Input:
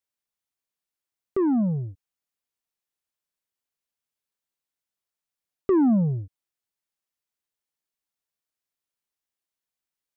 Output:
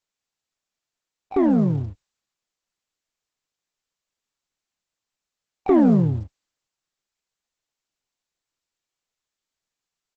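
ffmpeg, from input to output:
-filter_complex "[0:a]asplit=3[s0][s1][s2];[s1]asetrate=33038,aresample=44100,atempo=1.33484,volume=0.562[s3];[s2]asetrate=88200,aresample=44100,atempo=0.5,volume=0.251[s4];[s0][s3][s4]amix=inputs=3:normalize=0,asubboost=boost=2:cutoff=52,volume=1.41" -ar 48000 -c:a libopus -b:a 10k

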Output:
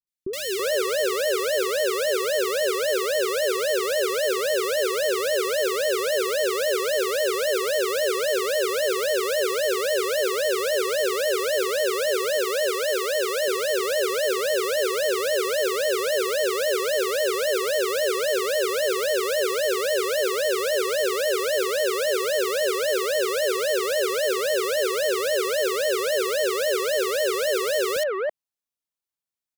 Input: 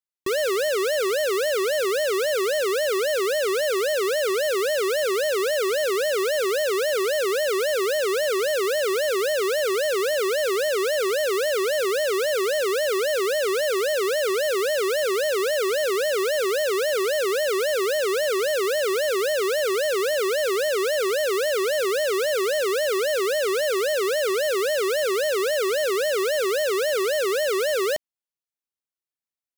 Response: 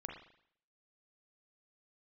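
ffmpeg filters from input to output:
-filter_complex "[0:a]asettb=1/sr,asplit=3[s0][s1][s2];[s0]atrim=end=12.374[s3];[s1]atrim=start=12.37:end=13.48,asetpts=PTS-STARTPTS,afade=t=in:d=0.004:c=qsin,afade=t=out:st=1.106:d=0.004:c=qsin,highpass=f=270:p=1[s4];[s2]atrim=start=13.476[s5];[s3][s4]acrossfade=d=0.004:c1=hsin:c2=qsin[s6];[s6][s5]acrossfade=d=0.004:c1=qsin:c2=hsin,acrossover=split=410|1900[s7][s8][s9];[s9]adelay=70[s10];[s8]adelay=330[s11];[s7][s11][s10]amix=inputs=3:normalize=0,volume=1.19"

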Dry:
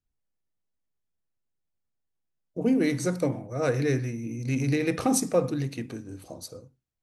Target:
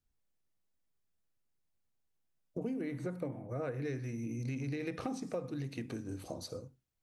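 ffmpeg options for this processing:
-filter_complex "[0:a]acrossover=split=4900[s0][s1];[s1]acompressor=threshold=0.00251:ratio=4:attack=1:release=60[s2];[s0][s2]amix=inputs=2:normalize=0,asettb=1/sr,asplit=3[s3][s4][s5];[s3]atrim=end=2.814[s6];[s4]atrim=start=2.81:end=3.83,asetpts=PTS-STARTPTS,afade=t=in:d=0.004:c=qsin,afade=t=out:st=1.016:d=0.004:c=qsin,equalizer=f=5400:t=o:w=1.1:g=-14[s7];[s5]atrim=start=3.826[s8];[s6][s7]acrossfade=d=0.004:c1=hsin:c2=qsin[s9];[s9][s8]acrossfade=d=0.004:c1=qsin:c2=hsin,acompressor=threshold=0.0141:ratio=6,volume=1.12"

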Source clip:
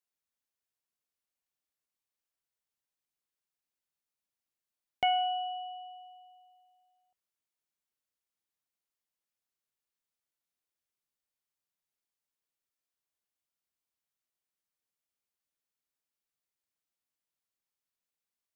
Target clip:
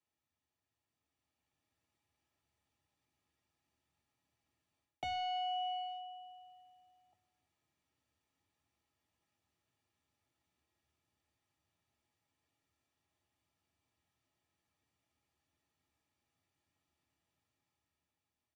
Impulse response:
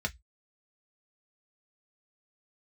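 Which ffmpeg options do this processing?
-filter_complex "[0:a]acrossover=split=130[s0][s1];[s1]asoftclip=type=tanh:threshold=0.0316[s2];[s0][s2]amix=inputs=2:normalize=0,asplit=2[s3][s4];[s4]adelay=340,highpass=300,lowpass=3400,asoftclip=type=hard:threshold=0.0126,volume=0.1[s5];[s3][s5]amix=inputs=2:normalize=0,dynaudnorm=f=240:g=11:m=2.11,bandreject=f=50:t=h:w=6,bandreject=f=100:t=h:w=6,bandreject=f=150:t=h:w=6,bandreject=f=200:t=h:w=6,bandreject=f=250:t=h:w=6[s6];[1:a]atrim=start_sample=2205,asetrate=57330,aresample=44100[s7];[s6][s7]afir=irnorm=-1:irlink=0,areverse,acompressor=threshold=0.0141:ratio=16,areverse,highshelf=f=2200:g=-11.5,volume=1.88"

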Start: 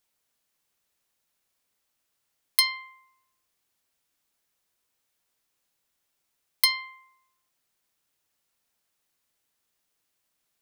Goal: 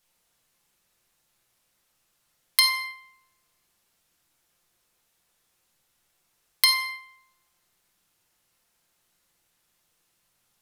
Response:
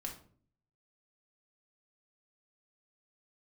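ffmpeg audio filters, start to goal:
-filter_complex "[1:a]atrim=start_sample=2205,asetrate=28665,aresample=44100[s0];[0:a][s0]afir=irnorm=-1:irlink=0,acompressor=threshold=0.0631:ratio=2.5,volume=2.11"

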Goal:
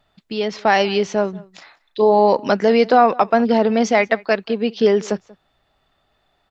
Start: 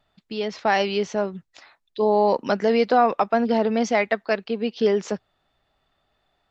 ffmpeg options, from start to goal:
-filter_complex "[0:a]asettb=1/sr,asplit=3[s0][s1][s2];[s0]atrim=end=1.344[s3];[s1]atrim=start=1.34:end=2.19,asetpts=PTS-STARTPTS,afade=t=in:d=0.004:c=qsin,afade=t=out:st=0.846:d=0.004:c=qsin,asplit=2[s4][s5];[s5]adelay=35,volume=0.316[s6];[s4][s6]amix=inputs=2:normalize=0,atrim=end_sample=37485[s7];[s2]atrim=start=2.186[s8];[s3][s7]acrossfade=d=0.004:c1=hsin:c2=qsin[s9];[s9][s8]acrossfade=d=0.004:c1=qsin:c2=hsin,asplit=2[s10][s11];[s11]adelay=186.6,volume=0.0708,highshelf=f=4000:g=-4.2[s12];[s10][s12]amix=inputs=2:normalize=0,volume=1.78"

